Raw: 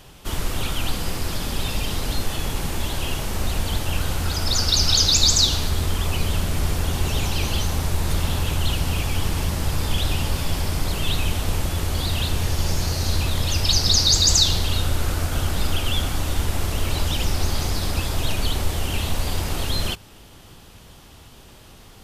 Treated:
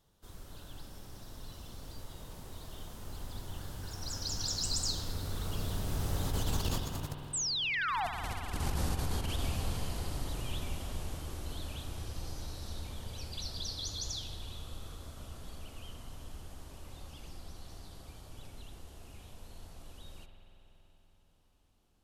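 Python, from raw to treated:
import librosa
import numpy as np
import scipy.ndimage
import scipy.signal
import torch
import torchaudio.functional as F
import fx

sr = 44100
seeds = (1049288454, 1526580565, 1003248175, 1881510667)

y = fx.doppler_pass(x, sr, speed_mps=34, closest_m=4.5, pass_at_s=7.61)
y = fx.peak_eq(y, sr, hz=2300.0, db=-6.5, octaves=0.94)
y = fx.over_compress(y, sr, threshold_db=-41.0, ratio=-0.5)
y = fx.spec_paint(y, sr, seeds[0], shape='fall', start_s=7.33, length_s=0.74, low_hz=660.0, high_hz=8500.0, level_db=-39.0)
y = fx.rev_spring(y, sr, rt60_s=3.7, pass_ms=(47,), chirp_ms=60, drr_db=5.0)
y = F.gain(torch.from_numpy(y), 5.5).numpy()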